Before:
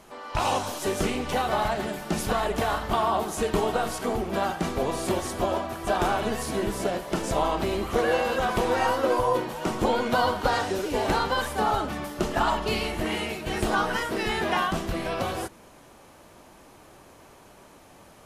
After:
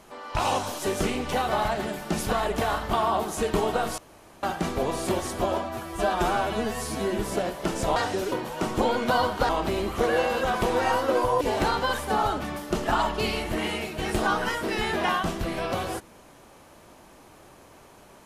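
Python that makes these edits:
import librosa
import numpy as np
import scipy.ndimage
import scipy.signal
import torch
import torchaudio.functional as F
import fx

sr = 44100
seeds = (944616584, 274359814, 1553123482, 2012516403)

y = fx.edit(x, sr, fx.room_tone_fill(start_s=3.98, length_s=0.45),
    fx.stretch_span(start_s=5.63, length_s=1.04, factor=1.5),
    fx.swap(start_s=7.44, length_s=1.92, other_s=10.53, other_length_s=0.36), tone=tone)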